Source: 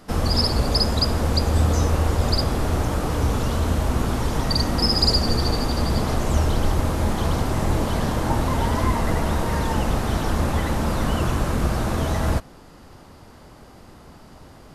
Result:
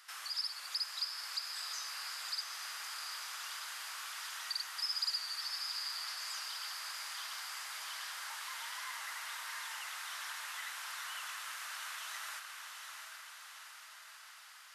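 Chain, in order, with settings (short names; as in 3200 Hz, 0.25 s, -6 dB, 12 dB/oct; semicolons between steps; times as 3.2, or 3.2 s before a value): HPF 1400 Hz 24 dB/oct; compressor 1.5:1, threshold -52 dBFS, peak gain reduction 12.5 dB; diffused feedback echo 0.735 s, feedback 61%, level -5 dB; gain -3 dB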